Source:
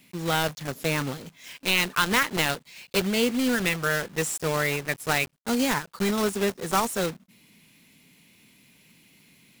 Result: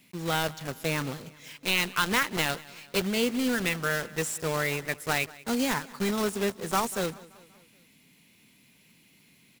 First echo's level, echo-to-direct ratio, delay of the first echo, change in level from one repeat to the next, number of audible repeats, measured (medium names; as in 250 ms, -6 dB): -21.0 dB, -19.5 dB, 191 ms, -5.5 dB, 3